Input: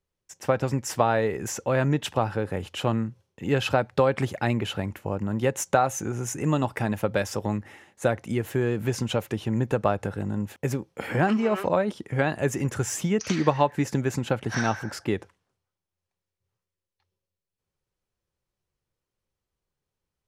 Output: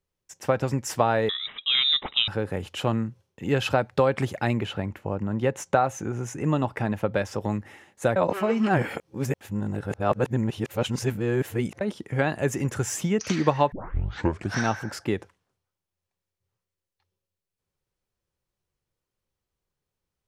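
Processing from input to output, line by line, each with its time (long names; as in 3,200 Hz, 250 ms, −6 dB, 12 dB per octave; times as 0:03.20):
0:01.29–0:02.28: voice inversion scrambler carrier 3,800 Hz
0:04.65–0:07.41: low-pass filter 3,200 Hz 6 dB per octave
0:08.16–0:11.81: reverse
0:13.72: tape start 0.85 s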